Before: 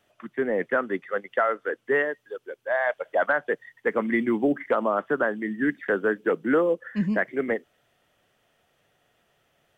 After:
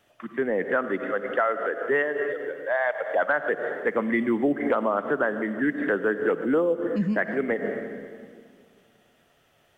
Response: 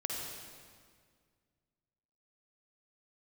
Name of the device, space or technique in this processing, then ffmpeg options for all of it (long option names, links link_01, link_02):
ducked reverb: -filter_complex "[0:a]asplit=3[link_01][link_02][link_03];[1:a]atrim=start_sample=2205[link_04];[link_02][link_04]afir=irnorm=-1:irlink=0[link_05];[link_03]apad=whole_len=431269[link_06];[link_05][link_06]sidechaincompress=threshold=-38dB:ratio=8:attack=36:release=100,volume=-1.5dB[link_07];[link_01][link_07]amix=inputs=2:normalize=0,asettb=1/sr,asplit=3[link_08][link_09][link_10];[link_08]atrim=end=6.444[link_11];[link_09]atrim=start=6.44:end=7.02,asetpts=PTS-STARTPTS,afade=type=in:duration=0.004:curve=qsin,afade=type=out:start_time=0.576:duration=0.004:curve=qsin,equalizer=frequency=1800:width=1.5:gain=-9[link_12];[link_10]atrim=start=7.016[link_13];[link_11][link_12]acrossfade=duration=0.004:curve1=hsin:curve2=qsin[link_14];[link_14][link_13]acrossfade=duration=0.004:curve1=qsin:curve2=hsin,volume=-1.5dB"